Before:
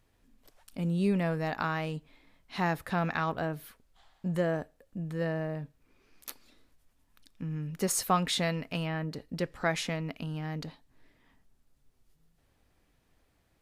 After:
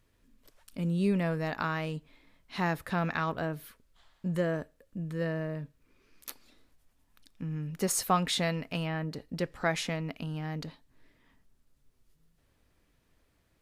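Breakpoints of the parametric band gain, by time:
parametric band 770 Hz 0.24 octaves
−10.5 dB
from 0:01.01 −4.5 dB
from 0:03.65 −11 dB
from 0:06.29 +0.5 dB
from 0:10.63 −6 dB

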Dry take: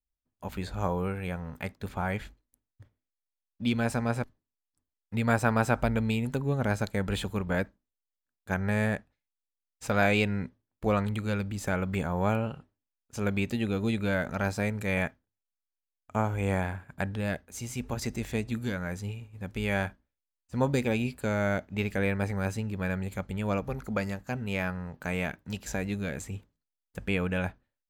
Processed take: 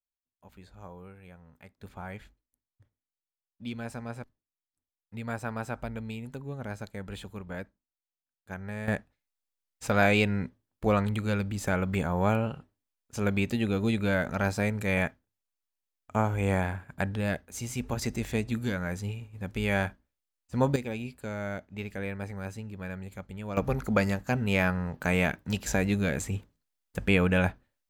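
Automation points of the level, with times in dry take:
−16.5 dB
from 0:01.78 −9.5 dB
from 0:08.88 +1.5 dB
from 0:20.76 −7 dB
from 0:23.57 +5.5 dB

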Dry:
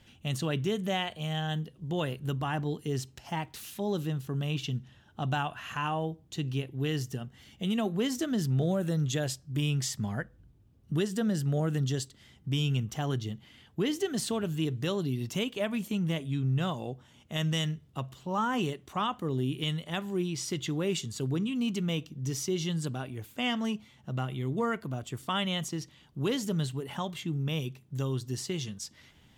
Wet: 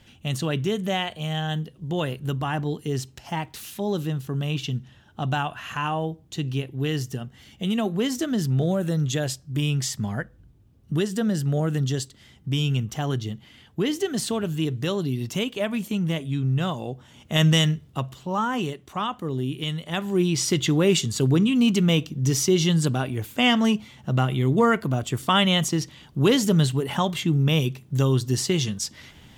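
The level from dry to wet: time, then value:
0:16.88 +5 dB
0:17.43 +12 dB
0:18.62 +3 dB
0:19.73 +3 dB
0:20.32 +11 dB

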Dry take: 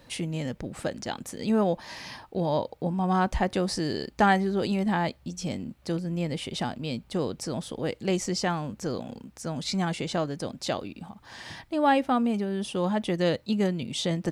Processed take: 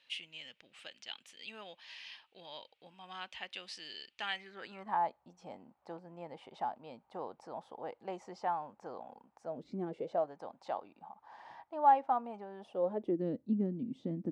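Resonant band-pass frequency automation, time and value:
resonant band-pass, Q 3.8
0:04.33 2,900 Hz
0:05.01 850 Hz
0:09.43 850 Hz
0:09.68 280 Hz
0:10.33 860 Hz
0:12.59 860 Hz
0:13.25 260 Hz

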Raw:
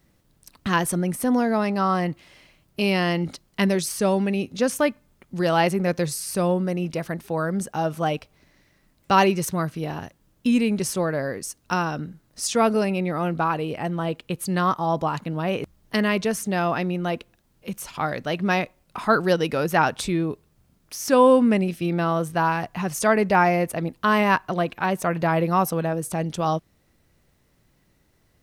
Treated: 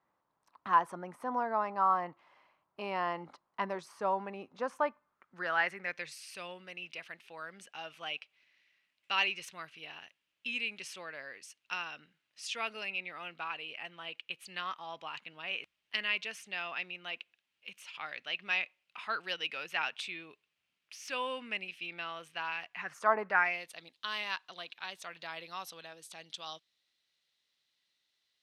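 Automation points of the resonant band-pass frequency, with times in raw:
resonant band-pass, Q 3.2
0:04.89 1,000 Hz
0:06.24 2,700 Hz
0:22.69 2,700 Hz
0:23.16 890 Hz
0:23.63 3,700 Hz

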